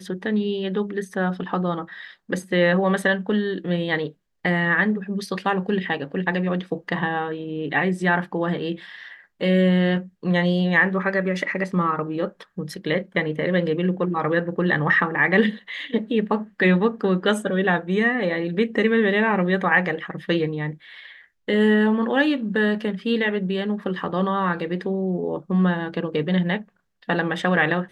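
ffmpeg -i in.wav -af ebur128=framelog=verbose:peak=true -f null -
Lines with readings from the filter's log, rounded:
Integrated loudness:
  I:         -22.4 LUFS
  Threshold: -32.6 LUFS
Loudness range:
  LRA:         3.4 LU
  Threshold: -42.5 LUFS
  LRA low:   -24.2 LUFS
  LRA high:  -20.9 LUFS
True peak:
  Peak:       -5.6 dBFS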